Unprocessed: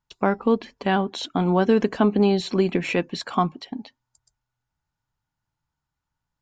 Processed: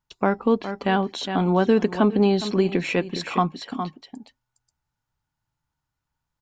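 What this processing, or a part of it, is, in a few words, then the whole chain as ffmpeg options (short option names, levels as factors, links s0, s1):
ducked delay: -filter_complex "[0:a]asplit=3[s0][s1][s2];[s1]adelay=411,volume=0.447[s3];[s2]apad=whole_len=301128[s4];[s3][s4]sidechaincompress=threshold=0.0316:ratio=8:attack=38:release=180[s5];[s0][s5]amix=inputs=2:normalize=0"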